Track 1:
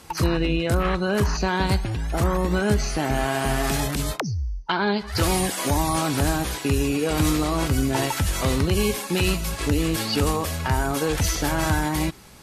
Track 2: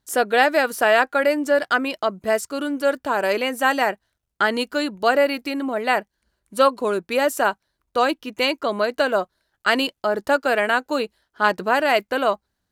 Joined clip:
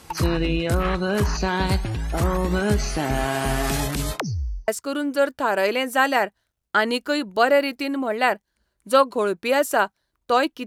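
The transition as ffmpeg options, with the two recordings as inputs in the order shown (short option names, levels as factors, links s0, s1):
-filter_complex "[0:a]apad=whole_dur=10.66,atrim=end=10.66,atrim=end=4.682[s0];[1:a]atrim=start=2.338:end=8.32[s1];[s0][s1]acrossfade=d=0.004:c1=hsin:c2=hsin"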